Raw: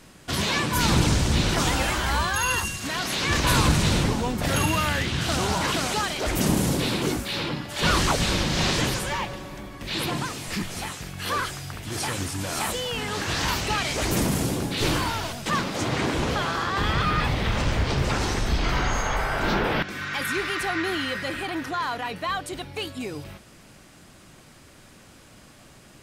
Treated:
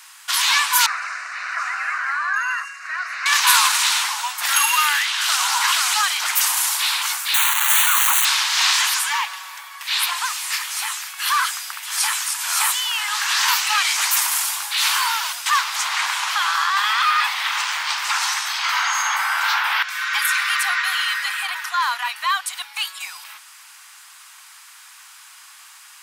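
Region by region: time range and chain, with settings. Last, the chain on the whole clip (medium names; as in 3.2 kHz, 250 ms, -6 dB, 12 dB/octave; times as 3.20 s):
0.86–3.26 s: low-pass 2.4 kHz + static phaser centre 900 Hz, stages 6
7.34–8.25 s: one-bit comparator + Butterworth band-stop 5.1 kHz, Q 3 + peaking EQ 4.2 kHz -4.5 dB 0.75 oct
whole clip: steep high-pass 910 Hz 48 dB/octave; treble shelf 9.3 kHz +8.5 dB; trim +8 dB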